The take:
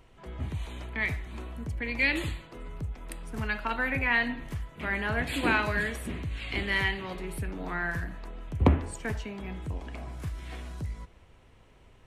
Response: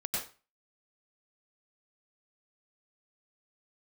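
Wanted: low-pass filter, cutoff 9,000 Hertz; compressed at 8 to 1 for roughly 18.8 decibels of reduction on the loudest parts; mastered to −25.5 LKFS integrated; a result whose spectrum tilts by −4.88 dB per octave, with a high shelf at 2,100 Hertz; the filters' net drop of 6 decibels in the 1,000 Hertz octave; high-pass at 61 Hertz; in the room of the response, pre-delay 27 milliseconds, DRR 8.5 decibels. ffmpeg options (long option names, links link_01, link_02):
-filter_complex "[0:a]highpass=61,lowpass=9000,equalizer=frequency=1000:width_type=o:gain=-9,highshelf=frequency=2100:gain=3.5,acompressor=threshold=-38dB:ratio=8,asplit=2[link_01][link_02];[1:a]atrim=start_sample=2205,adelay=27[link_03];[link_02][link_03]afir=irnorm=-1:irlink=0,volume=-13dB[link_04];[link_01][link_04]amix=inputs=2:normalize=0,volume=16.5dB"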